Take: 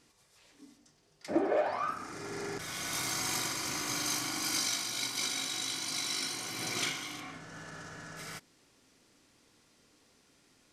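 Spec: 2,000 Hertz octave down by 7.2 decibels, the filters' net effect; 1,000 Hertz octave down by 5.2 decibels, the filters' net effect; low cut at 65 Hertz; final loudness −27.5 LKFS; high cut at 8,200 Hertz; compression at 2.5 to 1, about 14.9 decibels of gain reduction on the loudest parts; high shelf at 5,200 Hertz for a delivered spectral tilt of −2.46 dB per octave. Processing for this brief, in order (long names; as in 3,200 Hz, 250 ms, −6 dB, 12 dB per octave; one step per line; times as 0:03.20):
high-pass filter 65 Hz
low-pass filter 8,200 Hz
parametric band 1,000 Hz −5 dB
parametric band 2,000 Hz −6.5 dB
high-shelf EQ 5,200 Hz −6.5 dB
downward compressor 2.5 to 1, threshold −47 dBFS
level +18.5 dB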